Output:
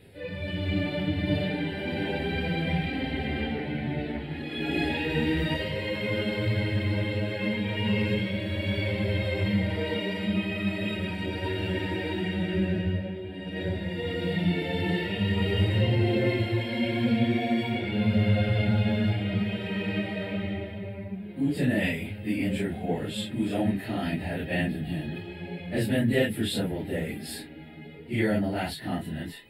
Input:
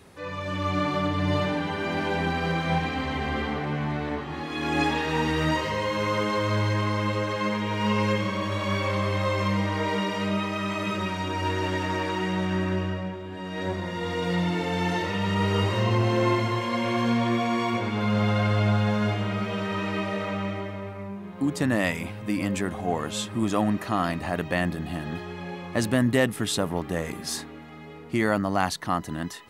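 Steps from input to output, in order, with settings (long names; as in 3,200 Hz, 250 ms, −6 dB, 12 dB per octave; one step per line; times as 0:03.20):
random phases in long frames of 100 ms
phaser with its sweep stopped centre 2,700 Hz, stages 4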